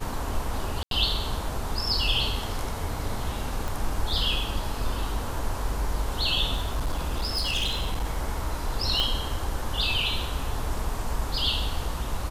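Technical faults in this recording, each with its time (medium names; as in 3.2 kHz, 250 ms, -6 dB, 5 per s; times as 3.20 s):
0.83–0.91 s: dropout 82 ms
3.68 s: pop
6.55–8.05 s: clipped -22.5 dBFS
9.00 s: pop -12 dBFS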